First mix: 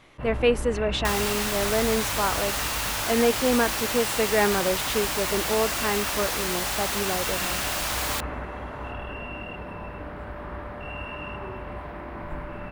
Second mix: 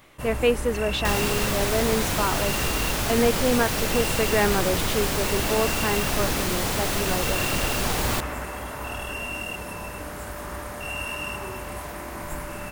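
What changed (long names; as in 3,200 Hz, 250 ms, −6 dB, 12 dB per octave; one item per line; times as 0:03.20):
first sound: remove high-frequency loss of the air 440 metres
second sound: remove inverse Chebyshev high-pass filter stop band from 280 Hz, stop band 50 dB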